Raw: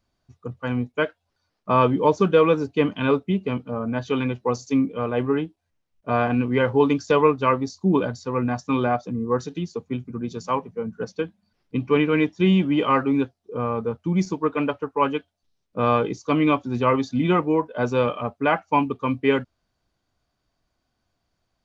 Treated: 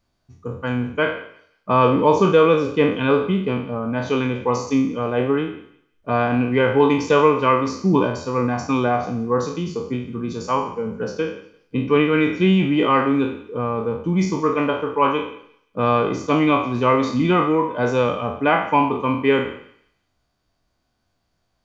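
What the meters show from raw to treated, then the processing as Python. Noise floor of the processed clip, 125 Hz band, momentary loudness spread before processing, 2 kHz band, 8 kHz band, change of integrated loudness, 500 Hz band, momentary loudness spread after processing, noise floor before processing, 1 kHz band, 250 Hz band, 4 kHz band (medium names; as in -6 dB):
-71 dBFS, +2.5 dB, 12 LU, +4.0 dB, no reading, +3.0 dB, +3.5 dB, 11 LU, -77 dBFS, +3.5 dB, +2.5 dB, +4.0 dB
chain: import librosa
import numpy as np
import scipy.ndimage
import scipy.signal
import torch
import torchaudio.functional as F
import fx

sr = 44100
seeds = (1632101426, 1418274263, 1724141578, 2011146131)

y = fx.spec_trails(x, sr, decay_s=0.58)
y = fx.echo_thinned(y, sr, ms=174, feedback_pct=29, hz=1000.0, wet_db=-18.5)
y = y * 10.0 ** (1.5 / 20.0)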